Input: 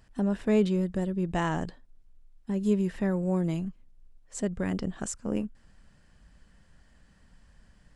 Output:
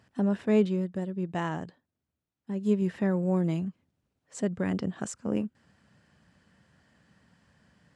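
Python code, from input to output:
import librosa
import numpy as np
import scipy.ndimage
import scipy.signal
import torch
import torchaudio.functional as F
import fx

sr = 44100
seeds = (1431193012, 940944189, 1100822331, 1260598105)

y = scipy.signal.sosfilt(scipy.signal.butter(4, 92.0, 'highpass', fs=sr, output='sos'), x)
y = fx.high_shelf(y, sr, hz=7600.0, db=-10.0)
y = fx.upward_expand(y, sr, threshold_db=-35.0, expansion=1.5, at=(0.46, 2.82))
y = F.gain(torch.from_numpy(y), 1.0).numpy()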